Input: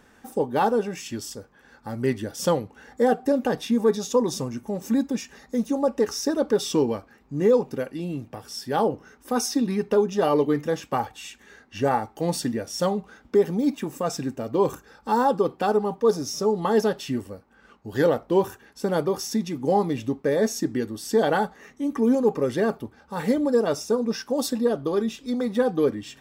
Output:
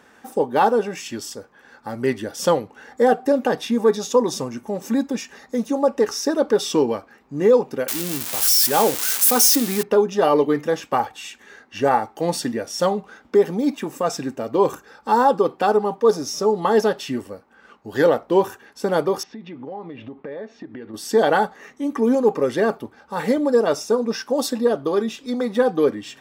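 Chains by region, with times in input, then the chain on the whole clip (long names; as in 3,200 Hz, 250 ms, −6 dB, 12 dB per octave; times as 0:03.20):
0:07.88–0:09.83: spike at every zero crossing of −17 dBFS + high-shelf EQ 6,300 Hz +6.5 dB
0:19.23–0:20.94: downward compressor 12 to 1, threshold −33 dBFS + low-pass filter 3,200 Hz 24 dB per octave
whole clip: high-pass filter 630 Hz 6 dB per octave; spectral tilt −1.5 dB per octave; level +7 dB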